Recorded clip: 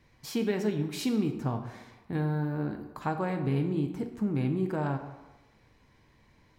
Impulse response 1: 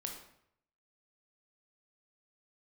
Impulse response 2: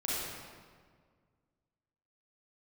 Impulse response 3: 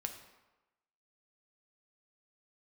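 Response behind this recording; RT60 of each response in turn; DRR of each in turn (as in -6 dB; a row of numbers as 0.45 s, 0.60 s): 3; 0.70 s, 1.8 s, 1.1 s; 1.5 dB, -7.5 dB, 4.5 dB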